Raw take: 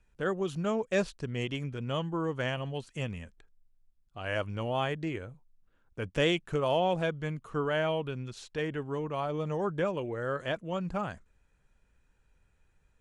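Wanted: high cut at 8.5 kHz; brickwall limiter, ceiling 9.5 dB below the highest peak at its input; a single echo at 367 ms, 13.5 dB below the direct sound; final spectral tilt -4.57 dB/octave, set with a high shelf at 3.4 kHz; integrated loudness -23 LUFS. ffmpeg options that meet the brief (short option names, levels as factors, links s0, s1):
-af "lowpass=8500,highshelf=f=3400:g=7,alimiter=limit=0.0668:level=0:latency=1,aecho=1:1:367:0.211,volume=3.76"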